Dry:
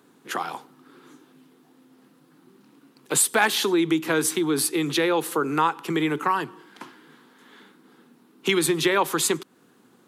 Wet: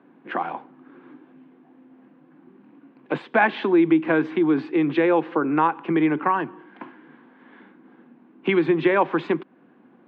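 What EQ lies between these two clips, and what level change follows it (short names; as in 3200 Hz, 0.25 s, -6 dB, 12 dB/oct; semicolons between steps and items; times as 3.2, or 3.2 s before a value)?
air absorption 88 m; speaker cabinet 210–2100 Hz, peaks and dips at 430 Hz -9 dB, 910 Hz -4 dB, 1300 Hz -10 dB, 1900 Hz -5 dB; +7.5 dB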